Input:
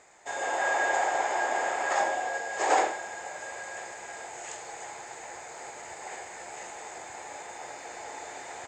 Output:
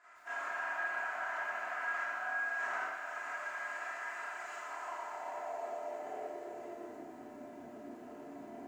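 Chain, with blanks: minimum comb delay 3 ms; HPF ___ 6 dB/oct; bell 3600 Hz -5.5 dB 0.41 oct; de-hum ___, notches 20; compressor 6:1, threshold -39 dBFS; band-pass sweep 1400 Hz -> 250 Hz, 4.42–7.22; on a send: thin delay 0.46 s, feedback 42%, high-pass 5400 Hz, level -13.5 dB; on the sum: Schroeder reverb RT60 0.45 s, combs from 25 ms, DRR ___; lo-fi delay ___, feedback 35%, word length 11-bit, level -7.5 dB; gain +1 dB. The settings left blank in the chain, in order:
140 Hz, 309.8 Hz, -7 dB, 0.118 s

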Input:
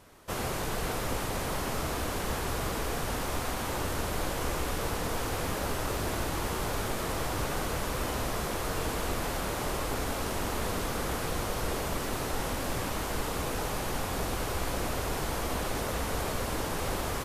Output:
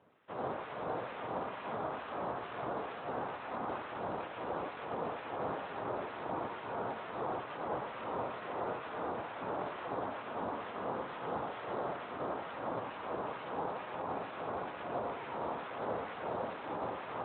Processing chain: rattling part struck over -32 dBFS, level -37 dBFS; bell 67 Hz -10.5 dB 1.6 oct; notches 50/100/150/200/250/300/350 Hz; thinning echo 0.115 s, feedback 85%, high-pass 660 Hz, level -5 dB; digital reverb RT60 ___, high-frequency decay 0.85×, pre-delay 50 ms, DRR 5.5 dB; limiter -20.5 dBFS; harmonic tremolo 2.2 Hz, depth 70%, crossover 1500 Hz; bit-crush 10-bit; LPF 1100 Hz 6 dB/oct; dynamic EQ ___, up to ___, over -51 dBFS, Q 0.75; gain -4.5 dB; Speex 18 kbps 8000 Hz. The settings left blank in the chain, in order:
0.71 s, 830 Hz, +6 dB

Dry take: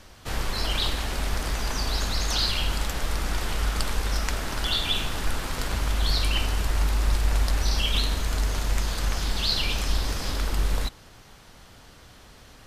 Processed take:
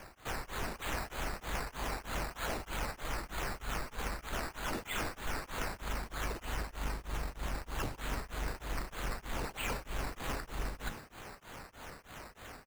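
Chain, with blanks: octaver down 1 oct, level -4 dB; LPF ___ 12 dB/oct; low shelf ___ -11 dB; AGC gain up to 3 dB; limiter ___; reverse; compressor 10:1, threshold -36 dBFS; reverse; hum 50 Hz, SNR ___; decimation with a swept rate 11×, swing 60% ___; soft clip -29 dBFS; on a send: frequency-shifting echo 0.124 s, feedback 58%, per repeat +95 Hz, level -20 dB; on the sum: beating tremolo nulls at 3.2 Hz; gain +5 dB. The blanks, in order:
2800 Hz, 320 Hz, -18 dBFS, 33 dB, 3.2 Hz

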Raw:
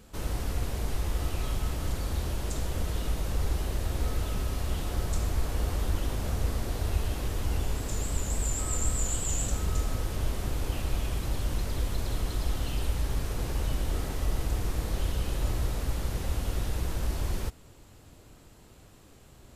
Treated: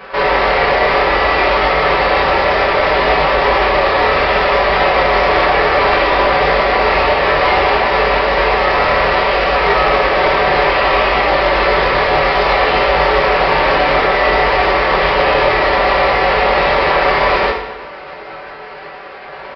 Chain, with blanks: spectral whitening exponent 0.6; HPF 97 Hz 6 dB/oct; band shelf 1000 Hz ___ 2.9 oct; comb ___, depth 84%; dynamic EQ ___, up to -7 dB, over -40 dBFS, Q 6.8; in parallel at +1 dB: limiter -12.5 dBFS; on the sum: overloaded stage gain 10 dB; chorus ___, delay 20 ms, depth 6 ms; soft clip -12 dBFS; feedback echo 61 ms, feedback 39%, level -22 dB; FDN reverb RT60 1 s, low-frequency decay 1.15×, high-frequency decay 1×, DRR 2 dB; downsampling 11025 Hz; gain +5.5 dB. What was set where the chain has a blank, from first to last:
+16 dB, 5.2 ms, 1500 Hz, 0.62 Hz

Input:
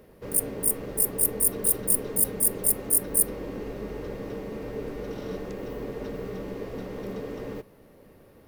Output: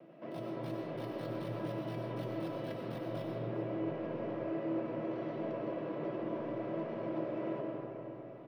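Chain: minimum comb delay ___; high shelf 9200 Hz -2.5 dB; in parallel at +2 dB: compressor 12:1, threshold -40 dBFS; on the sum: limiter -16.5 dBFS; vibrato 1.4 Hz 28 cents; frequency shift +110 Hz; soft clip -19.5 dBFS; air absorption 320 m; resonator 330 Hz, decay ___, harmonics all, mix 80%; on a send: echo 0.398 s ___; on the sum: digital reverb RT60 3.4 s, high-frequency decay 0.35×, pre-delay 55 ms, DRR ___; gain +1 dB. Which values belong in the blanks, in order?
0.36 ms, 0.24 s, -16 dB, -2 dB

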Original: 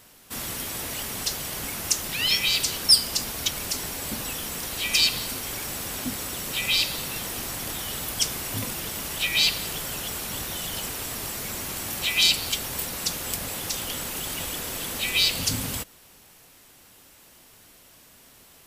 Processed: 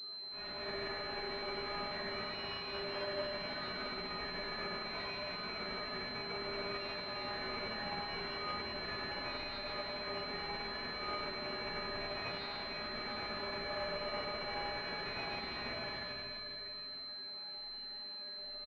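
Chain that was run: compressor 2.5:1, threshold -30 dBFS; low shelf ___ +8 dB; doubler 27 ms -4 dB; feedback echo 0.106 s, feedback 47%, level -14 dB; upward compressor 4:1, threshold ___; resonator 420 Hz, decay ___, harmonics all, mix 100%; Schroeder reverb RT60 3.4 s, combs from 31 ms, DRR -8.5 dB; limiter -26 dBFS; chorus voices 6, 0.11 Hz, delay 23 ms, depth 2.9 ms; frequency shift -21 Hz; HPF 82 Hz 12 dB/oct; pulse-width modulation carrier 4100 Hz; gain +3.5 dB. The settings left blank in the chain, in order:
290 Hz, -42 dBFS, 0.32 s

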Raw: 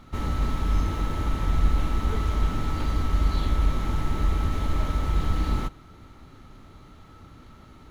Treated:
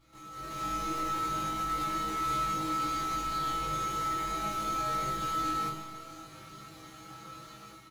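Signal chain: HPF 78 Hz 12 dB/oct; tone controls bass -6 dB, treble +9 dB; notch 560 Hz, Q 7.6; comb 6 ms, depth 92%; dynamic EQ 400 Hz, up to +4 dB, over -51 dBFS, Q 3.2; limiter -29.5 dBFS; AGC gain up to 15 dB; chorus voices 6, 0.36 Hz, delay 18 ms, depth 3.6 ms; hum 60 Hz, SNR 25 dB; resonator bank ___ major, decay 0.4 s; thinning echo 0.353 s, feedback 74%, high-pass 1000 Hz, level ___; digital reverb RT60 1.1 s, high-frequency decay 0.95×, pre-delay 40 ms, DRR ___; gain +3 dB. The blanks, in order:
G#2, -21.5 dB, 8 dB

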